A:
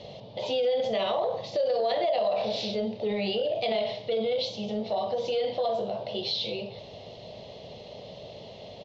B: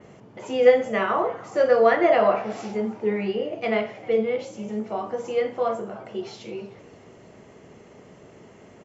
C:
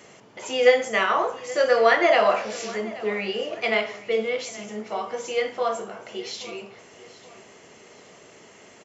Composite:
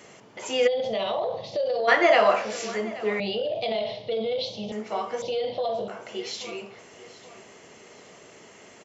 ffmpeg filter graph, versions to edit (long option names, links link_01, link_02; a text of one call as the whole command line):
ffmpeg -i take0.wav -i take1.wav -i take2.wav -filter_complex "[0:a]asplit=3[link_01][link_02][link_03];[2:a]asplit=4[link_04][link_05][link_06][link_07];[link_04]atrim=end=0.68[link_08];[link_01]atrim=start=0.66:end=1.89[link_09];[link_05]atrim=start=1.87:end=3.202[link_10];[link_02]atrim=start=3.198:end=4.722[link_11];[link_06]atrim=start=4.718:end=5.222[link_12];[link_03]atrim=start=5.218:end=5.882[link_13];[link_07]atrim=start=5.878[link_14];[link_08][link_09]acrossfade=duration=0.02:curve1=tri:curve2=tri[link_15];[link_15][link_10]acrossfade=duration=0.02:curve1=tri:curve2=tri[link_16];[link_16][link_11]acrossfade=duration=0.004:curve1=hsin:curve2=hsin[link_17];[link_17][link_12]acrossfade=duration=0.004:curve1=hsin:curve2=hsin[link_18];[link_18][link_13]acrossfade=duration=0.004:curve1=hsin:curve2=hsin[link_19];[link_19][link_14]acrossfade=duration=0.004:curve1=hsin:curve2=hsin" out.wav